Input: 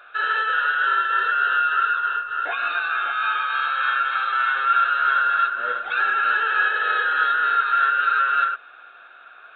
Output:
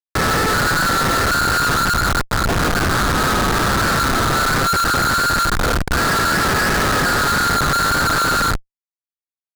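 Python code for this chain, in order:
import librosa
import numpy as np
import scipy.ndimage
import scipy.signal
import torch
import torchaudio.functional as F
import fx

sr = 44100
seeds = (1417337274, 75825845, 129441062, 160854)

y = fx.bandpass_q(x, sr, hz=600.0, q=0.58)
y = fx.tilt_eq(y, sr, slope=2.0)
y = fx.notch(y, sr, hz=970.0, q=8.0)
y = fx.echo_feedback(y, sr, ms=536, feedback_pct=37, wet_db=-22)
y = fx.schmitt(y, sr, flips_db=-25.0)
y = fx.doppler_dist(y, sr, depth_ms=0.45)
y = y * 10.0 ** (8.0 / 20.0)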